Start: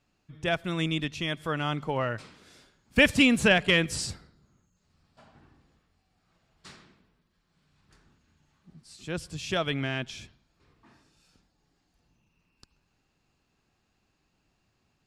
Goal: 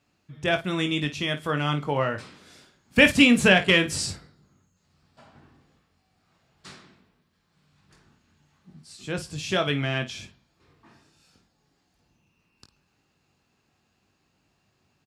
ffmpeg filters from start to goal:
-af "highpass=70,aecho=1:1:21|53:0.422|0.224,volume=3dB"

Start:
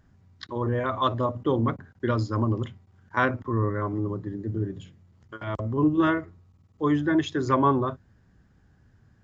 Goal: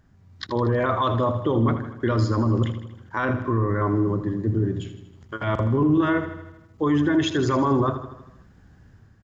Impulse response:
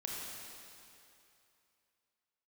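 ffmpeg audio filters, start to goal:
-af "dynaudnorm=f=120:g=5:m=6dB,alimiter=limit=-15.5dB:level=0:latency=1:release=15,aecho=1:1:79|158|237|316|395|474|553:0.282|0.163|0.0948|0.055|0.0319|0.0185|0.0107,volume=1.5dB"

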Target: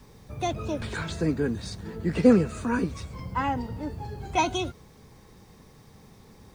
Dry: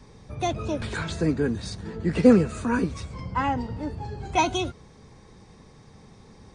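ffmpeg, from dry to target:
-af "acrusher=bits=9:mix=0:aa=0.000001,volume=-2dB"

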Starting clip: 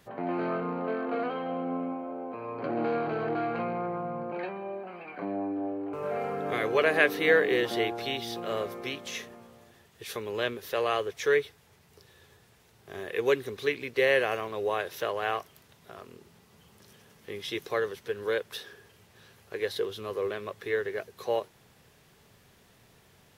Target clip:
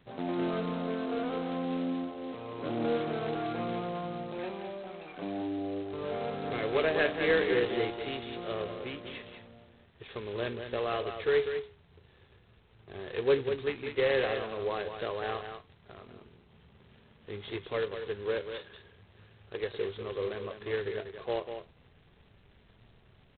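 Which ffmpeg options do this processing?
-filter_complex "[0:a]lowshelf=f=460:g=9.5,flanger=delay=7.2:depth=5.3:regen=78:speed=0.3:shape=triangular,asubboost=boost=2.5:cutoff=74,asplit=2[a][b];[b]aecho=0:1:195:0.398[c];[a][c]amix=inputs=2:normalize=0,volume=-3dB" -ar 8000 -c:a adpcm_g726 -b:a 16k

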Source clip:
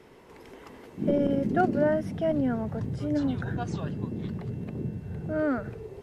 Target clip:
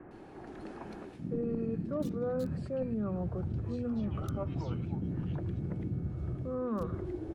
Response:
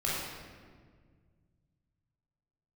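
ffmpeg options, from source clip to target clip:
-filter_complex "[0:a]highshelf=f=4.7k:g=-10.5,acrossover=split=520|1500[a][b][c];[c]aeval=exprs='(mod(75*val(0)+1,2)-1)/75':c=same[d];[a][b][d]amix=inputs=3:normalize=0,bandreject=f=60:t=h:w=6,bandreject=f=120:t=h:w=6,bandreject=f=180:t=h:w=6,bandreject=f=240:t=h:w=6,bandreject=f=300:t=h:w=6,asetrate=36162,aresample=44100,areverse,acompressor=threshold=-35dB:ratio=6,areverse,acrossover=split=2000[e][f];[f]adelay=110[g];[e][g]amix=inputs=2:normalize=0,volume=3.5dB"

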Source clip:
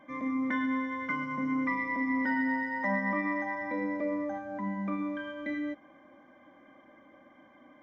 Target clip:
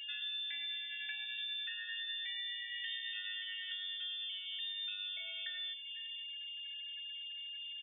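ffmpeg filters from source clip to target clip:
-filter_complex "[0:a]asplit=2[a][b];[b]aecho=0:1:501:0.106[c];[a][c]amix=inputs=2:normalize=0,afftfilt=real='re*gte(hypot(re,im),0.00355)':imag='im*gte(hypot(re,im),0.00355)':win_size=1024:overlap=0.75,highshelf=f=2.5k:g=-2.5,bandreject=f=291.7:t=h:w=4,bandreject=f=583.4:t=h:w=4,bandreject=f=875.1:t=h:w=4,bandreject=f=1.1668k:t=h:w=4,bandreject=f=1.4585k:t=h:w=4,bandreject=f=1.7502k:t=h:w=4,bandreject=f=2.0419k:t=h:w=4,bandreject=f=2.3336k:t=h:w=4,bandreject=f=2.6253k:t=h:w=4,bandreject=f=2.917k:t=h:w=4,bandreject=f=3.2087k:t=h:w=4,bandreject=f=3.5004k:t=h:w=4,bandreject=f=3.7921k:t=h:w=4,bandreject=f=4.0838k:t=h:w=4,bandreject=f=4.3755k:t=h:w=4,bandreject=f=4.6672k:t=h:w=4,bandreject=f=4.9589k:t=h:w=4,bandreject=f=5.2506k:t=h:w=4,bandreject=f=5.5423k:t=h:w=4,bandreject=f=5.834k:t=h:w=4,bandreject=f=6.1257k:t=h:w=4,bandreject=f=6.4174k:t=h:w=4,bandreject=f=6.7091k:t=h:w=4,bandreject=f=7.0008k:t=h:w=4,bandreject=f=7.2925k:t=h:w=4,bandreject=f=7.5842k:t=h:w=4,bandreject=f=7.8759k:t=h:w=4,bandreject=f=8.1676k:t=h:w=4,bandreject=f=8.4593k:t=h:w=4,bandreject=f=8.751k:t=h:w=4,bandreject=f=9.0427k:t=h:w=4,aeval=exprs='val(0)+0.00562*sin(2*PI*980*n/s)':c=same,acompressor=threshold=-42dB:ratio=8,lowshelf=f=100:g=5,lowpass=f=3.2k:t=q:w=0.5098,lowpass=f=3.2k:t=q:w=0.6013,lowpass=f=3.2k:t=q:w=0.9,lowpass=f=3.2k:t=q:w=2.563,afreqshift=-3800,volume=2dB"

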